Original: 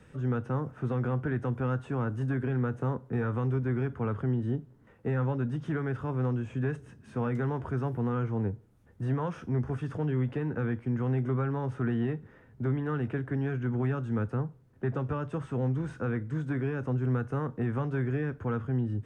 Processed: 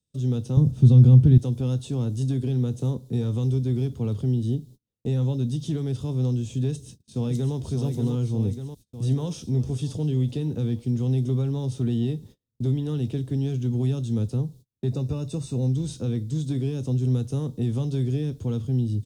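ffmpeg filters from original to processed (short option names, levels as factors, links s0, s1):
-filter_complex "[0:a]asettb=1/sr,asplit=3[s0][s1][s2];[s0]atrim=end=0.574[s3];[s1]atrim=start=0.57:end=1.38,asetpts=PTS-STARTPTS,afade=t=in:d=0.004:c=qsin,afade=t=out:st=0.806:d=0.004:c=qsin,bass=f=250:g=14,treble=f=4000:g=-2[s4];[s2]atrim=start=1.376[s5];[s3][s4]acrossfade=d=0.004:c1=hsin:c2=qsin[s6];[s6][s5]acrossfade=d=0.004:c1=qsin:c2=hsin,asplit=2[s7][s8];[s8]afade=t=in:st=6.7:d=0.01,afade=t=out:st=7.56:d=0.01,aecho=0:1:590|1180|1770|2360|2950|3540|4130|4720|5310|5900:0.530884|0.345075|0.224299|0.145794|0.0947662|0.061598|0.0400387|0.0260252|0.0169164|0.0109956[s9];[s7][s9]amix=inputs=2:normalize=0,asettb=1/sr,asplit=3[s10][s11][s12];[s10]atrim=end=14.874[s13];[s11]atrim=start=14.87:end=15.69,asetpts=PTS-STARTPTS,afade=t=in:d=0.004:c=qsin,afade=t=out:st=0.816:d=0.004:c=qsin,asuperstop=centerf=3200:order=20:qfactor=5.8[s14];[s12]atrim=start=15.686[s15];[s13][s14]acrossfade=d=0.004:c1=hsin:c2=qsin[s16];[s16][s15]acrossfade=d=0.004:c1=qsin:c2=hsin,agate=range=0.0178:threshold=0.00355:ratio=16:detection=peak,firequalizer=gain_entry='entry(110,0);entry(1500,-25);entry(3700,14)':delay=0.05:min_phase=1,volume=2.11"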